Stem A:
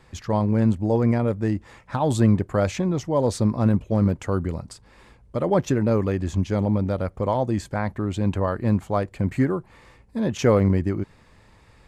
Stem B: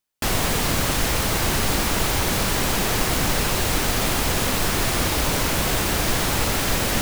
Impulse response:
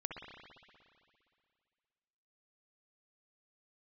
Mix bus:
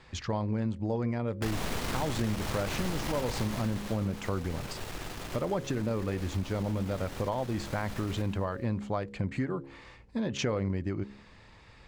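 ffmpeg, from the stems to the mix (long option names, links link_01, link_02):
-filter_complex "[0:a]lowpass=4200,volume=-2dB[link_01];[1:a]lowpass=frequency=1300:poles=1,aeval=exprs='(tanh(8.91*val(0)+0.6)-tanh(0.6))/8.91':channel_layout=same,adelay=1200,volume=-2dB,afade=type=out:start_time=3.22:duration=0.75:silence=0.237137,asplit=2[link_02][link_03];[link_03]volume=-7dB,aecho=0:1:113|226|339|452|565|678|791|904|1017|1130:1|0.6|0.36|0.216|0.13|0.0778|0.0467|0.028|0.0168|0.0101[link_04];[link_01][link_02][link_04]amix=inputs=3:normalize=0,highshelf=frequency=2800:gain=10.5,bandreject=frequency=68.55:width_type=h:width=4,bandreject=frequency=137.1:width_type=h:width=4,bandreject=frequency=205.65:width_type=h:width=4,bandreject=frequency=274.2:width_type=h:width=4,bandreject=frequency=342.75:width_type=h:width=4,bandreject=frequency=411.3:width_type=h:width=4,bandreject=frequency=479.85:width_type=h:width=4,bandreject=frequency=548.4:width_type=h:width=4,acompressor=threshold=-29dB:ratio=4"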